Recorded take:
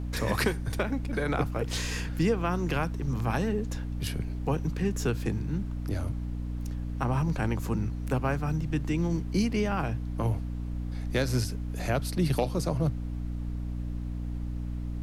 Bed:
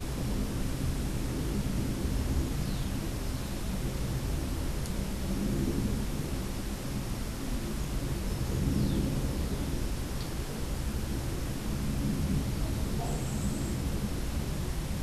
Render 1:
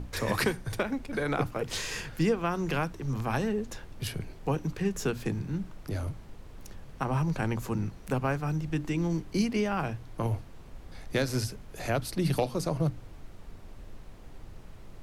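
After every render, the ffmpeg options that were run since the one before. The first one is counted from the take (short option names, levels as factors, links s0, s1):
-af "bandreject=f=60:t=h:w=6,bandreject=f=120:t=h:w=6,bandreject=f=180:t=h:w=6,bandreject=f=240:t=h:w=6,bandreject=f=300:t=h:w=6"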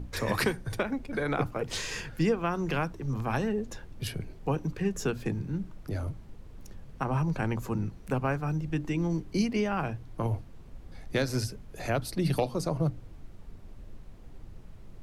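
-af "afftdn=nr=6:nf=-48"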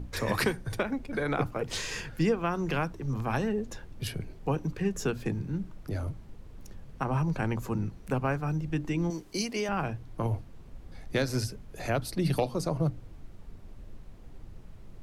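-filter_complex "[0:a]asettb=1/sr,asplit=3[s0][s1][s2];[s0]atrim=end=9.104[s3];[s1]atrim=start=9.1:end=9.69,asetpts=PTS-STARTPTS,afade=t=in:d=0.004:c=qsin,afade=t=out:st=0.586:d=0.004:c=qsin,bass=f=250:g=-12,treble=f=4000:g=8[s4];[s2]atrim=start=9.686[s5];[s3][s4]acrossfade=d=0.004:c1=hsin:c2=qsin[s6];[s6][s5]acrossfade=d=0.004:c1=qsin:c2=hsin"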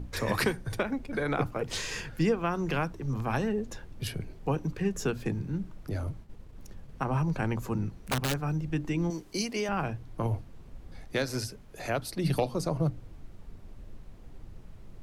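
-filter_complex "[0:a]asettb=1/sr,asplit=3[s0][s1][s2];[s0]atrim=end=6.044[s3];[s1]atrim=start=6.04:end=6.92,asetpts=PTS-STARTPTS,afade=t=in:d=0.004:c=qsin,afade=t=out:st=0.876:d=0.004:c=qsin,agate=range=0.0224:threshold=0.00631:ratio=3:release=100:detection=peak[s4];[s2]atrim=start=6.916[s5];[s3][s4]acrossfade=d=0.004:c1=hsin:c2=qsin[s6];[s6][s5]acrossfade=d=0.004:c1=qsin:c2=hsin,asettb=1/sr,asplit=3[s7][s8][s9];[s7]atrim=end=7.954[s10];[s8]atrim=start=7.95:end=8.39,asetpts=PTS-STARTPTS,afade=t=in:d=0.004:c=qsin,afade=t=out:st=0.436:d=0.004:c=qsin,aeval=exprs='(mod(12.6*val(0)+1,2)-1)/12.6':c=same[s11];[s9]atrim=start=8.386[s12];[s10][s11]acrossfade=d=0.004:c1=hsin:c2=qsin[s13];[s13][s12]acrossfade=d=0.004:c1=qsin:c2=hsin,asettb=1/sr,asplit=3[s14][s15][s16];[s14]atrim=end=11.054[s17];[s15]atrim=start=11.05:end=12.24,asetpts=PTS-STARTPTS,afade=t=in:d=0.004:c=qsin,afade=t=out:st=1.186:d=0.004:c=qsin,lowshelf=f=230:g=-6.5[s18];[s16]atrim=start=12.236[s19];[s17][s18]acrossfade=d=0.004:c1=hsin:c2=qsin[s20];[s20][s19]acrossfade=d=0.004:c1=qsin:c2=hsin"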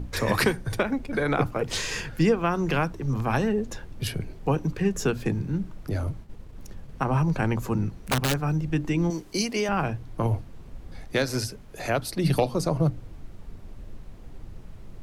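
-af "volume=1.78"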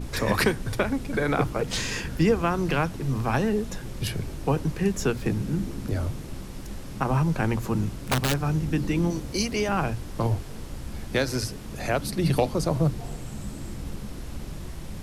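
-filter_complex "[1:a]volume=0.596[s0];[0:a][s0]amix=inputs=2:normalize=0"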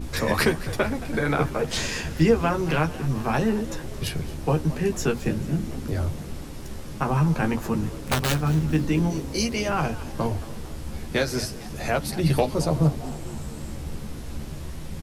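-filter_complex "[0:a]asplit=2[s0][s1];[s1]adelay=13,volume=0.562[s2];[s0][s2]amix=inputs=2:normalize=0,asplit=5[s3][s4][s5][s6][s7];[s4]adelay=222,afreqshift=100,volume=0.133[s8];[s5]adelay=444,afreqshift=200,volume=0.0692[s9];[s6]adelay=666,afreqshift=300,volume=0.0359[s10];[s7]adelay=888,afreqshift=400,volume=0.0188[s11];[s3][s8][s9][s10][s11]amix=inputs=5:normalize=0"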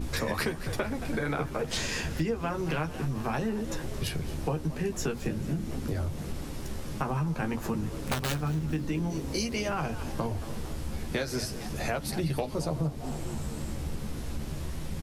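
-af "acompressor=threshold=0.0398:ratio=4"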